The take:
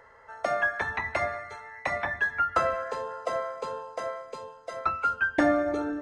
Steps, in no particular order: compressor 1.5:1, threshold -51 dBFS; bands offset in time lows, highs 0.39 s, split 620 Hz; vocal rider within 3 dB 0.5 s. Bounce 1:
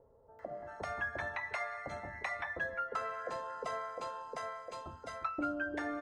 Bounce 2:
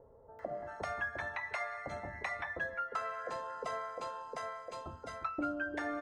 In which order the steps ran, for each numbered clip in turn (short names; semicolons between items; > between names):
vocal rider > bands offset in time > compressor; bands offset in time > vocal rider > compressor